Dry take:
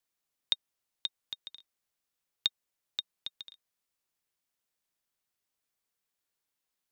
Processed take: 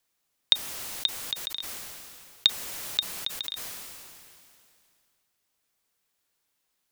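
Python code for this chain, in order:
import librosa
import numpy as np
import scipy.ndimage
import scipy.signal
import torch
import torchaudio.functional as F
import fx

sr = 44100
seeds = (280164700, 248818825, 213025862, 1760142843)

y = fx.sustainer(x, sr, db_per_s=24.0)
y = F.gain(torch.from_numpy(y), 8.5).numpy()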